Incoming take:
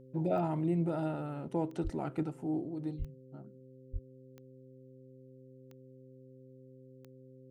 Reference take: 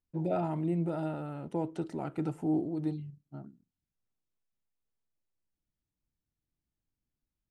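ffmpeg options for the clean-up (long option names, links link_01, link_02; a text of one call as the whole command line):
ffmpeg -i in.wav -filter_complex "[0:a]adeclick=threshold=4,bandreject=frequency=130.1:width_type=h:width=4,bandreject=frequency=260.2:width_type=h:width=4,bandreject=frequency=390.3:width_type=h:width=4,bandreject=frequency=520.4:width_type=h:width=4,asplit=3[link_01][link_02][link_03];[link_01]afade=type=out:start_time=1.83:duration=0.02[link_04];[link_02]highpass=frequency=140:width=0.5412,highpass=frequency=140:width=1.3066,afade=type=in:start_time=1.83:duration=0.02,afade=type=out:start_time=1.95:duration=0.02[link_05];[link_03]afade=type=in:start_time=1.95:duration=0.02[link_06];[link_04][link_05][link_06]amix=inputs=3:normalize=0,asplit=3[link_07][link_08][link_09];[link_07]afade=type=out:start_time=2.98:duration=0.02[link_10];[link_08]highpass=frequency=140:width=0.5412,highpass=frequency=140:width=1.3066,afade=type=in:start_time=2.98:duration=0.02,afade=type=out:start_time=3.1:duration=0.02[link_11];[link_09]afade=type=in:start_time=3.1:duration=0.02[link_12];[link_10][link_11][link_12]amix=inputs=3:normalize=0,asplit=3[link_13][link_14][link_15];[link_13]afade=type=out:start_time=3.92:duration=0.02[link_16];[link_14]highpass=frequency=140:width=0.5412,highpass=frequency=140:width=1.3066,afade=type=in:start_time=3.92:duration=0.02,afade=type=out:start_time=4.04:duration=0.02[link_17];[link_15]afade=type=in:start_time=4.04:duration=0.02[link_18];[link_16][link_17][link_18]amix=inputs=3:normalize=0,asetnsamples=nb_out_samples=441:pad=0,asendcmd='2.23 volume volume 5dB',volume=0dB" out.wav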